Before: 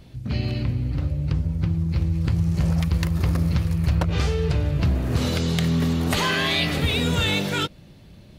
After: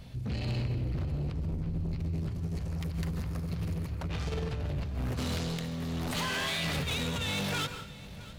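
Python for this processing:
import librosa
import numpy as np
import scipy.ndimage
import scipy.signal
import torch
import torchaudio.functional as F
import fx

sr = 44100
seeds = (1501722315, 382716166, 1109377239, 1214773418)

y = fx.octave_divider(x, sr, octaves=2, level_db=-5.0, at=(1.51, 2.01))
y = fx.peak_eq(y, sr, hz=340.0, db=-15.0, octaves=0.33)
y = fx.over_compress(y, sr, threshold_db=-24.0, ratio=-0.5)
y = 10.0 ** (-27.0 / 20.0) * np.tanh(y / 10.0 ** (-27.0 / 20.0))
y = fx.echo_feedback(y, sr, ms=663, feedback_pct=43, wet_db=-19)
y = fx.rev_plate(y, sr, seeds[0], rt60_s=0.51, hf_ratio=0.85, predelay_ms=120, drr_db=9.5)
y = y * 10.0 ** (-2.5 / 20.0)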